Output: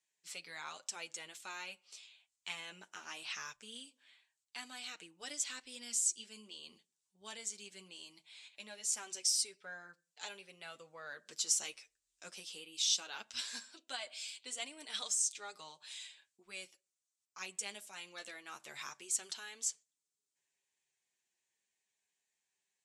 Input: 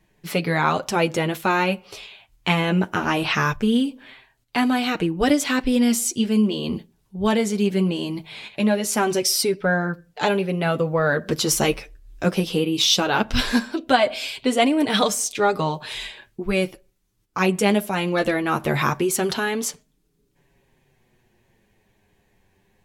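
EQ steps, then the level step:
resonant band-pass 7,800 Hz, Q 2.7
high-frequency loss of the air 56 metres
0.0 dB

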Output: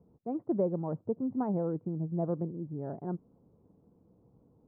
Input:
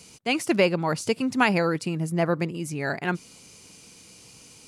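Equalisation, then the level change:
Bessel low-pass filter 560 Hz, order 6
−6.0 dB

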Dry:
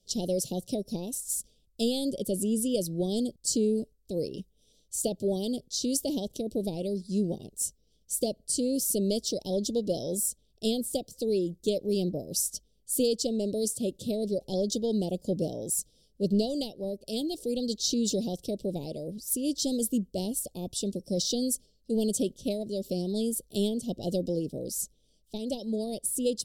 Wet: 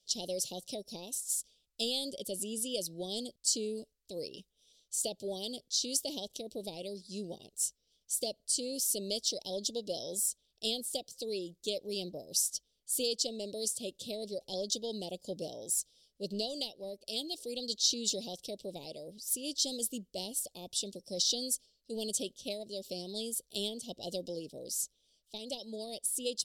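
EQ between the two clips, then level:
tilt shelving filter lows −9 dB, about 690 Hz
low-shelf EQ 410 Hz −4 dB
high-shelf EQ 7,100 Hz −11 dB
−4.0 dB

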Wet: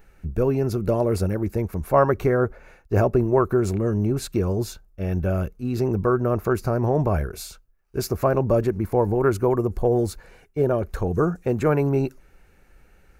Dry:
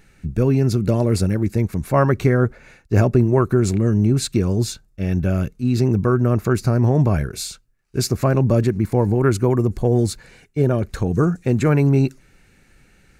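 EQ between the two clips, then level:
octave-band graphic EQ 125/250/2,000/4,000/8,000 Hz −10/−8/−7/−9/−11 dB
+3.0 dB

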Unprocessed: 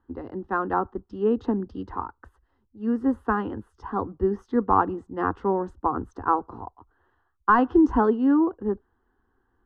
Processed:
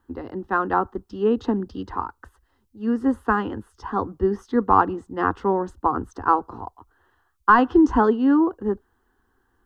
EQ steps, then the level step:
high-shelf EQ 2,500 Hz +11.5 dB
+2.0 dB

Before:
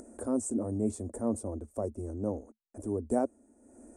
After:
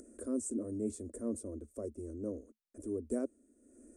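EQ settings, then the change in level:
phaser with its sweep stopped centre 340 Hz, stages 4
−3.5 dB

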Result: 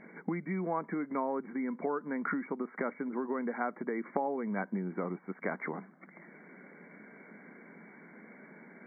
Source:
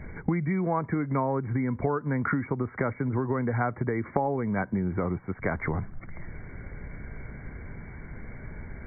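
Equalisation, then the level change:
linear-phase brick-wall high-pass 170 Hz
−5.5 dB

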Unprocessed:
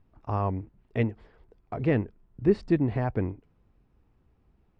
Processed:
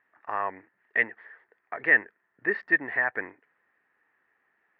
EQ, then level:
high-pass filter 460 Hz 12 dB per octave
low-pass with resonance 1,800 Hz, resonance Q 11
tilt shelving filter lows −5 dB, about 1,100 Hz
0.0 dB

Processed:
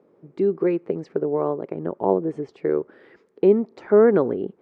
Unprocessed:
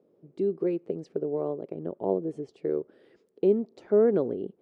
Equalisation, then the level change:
high-frequency loss of the air 61 metres
flat-topped bell 1,400 Hz +8.5 dB
+6.5 dB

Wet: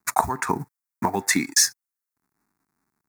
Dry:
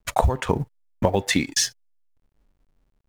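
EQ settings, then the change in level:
high-pass filter 270 Hz 12 dB per octave
high-shelf EQ 6,800 Hz +5 dB
phaser with its sweep stopped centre 1,300 Hz, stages 4
+5.5 dB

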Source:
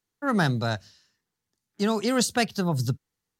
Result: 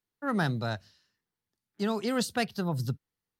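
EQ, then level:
parametric band 6,800 Hz −7 dB 0.64 octaves
−5.0 dB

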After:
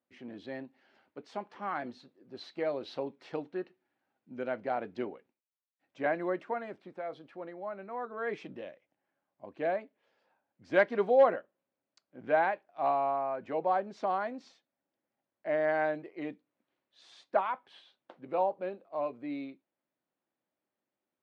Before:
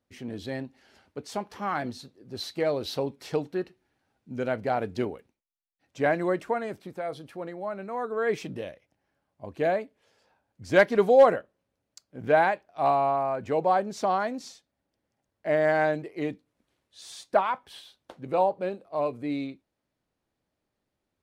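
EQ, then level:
high-pass filter 230 Hz 12 dB per octave
low-pass filter 3,000 Hz 12 dB per octave
notch filter 440 Hz, Q 12
−5.5 dB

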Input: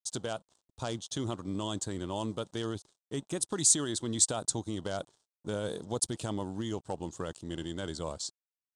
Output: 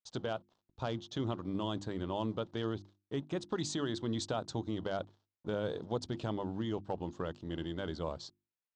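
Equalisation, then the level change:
low-pass filter 5,400 Hz 12 dB per octave
high-frequency loss of the air 160 metres
mains-hum notches 50/100/150/200/250/300/350 Hz
0.0 dB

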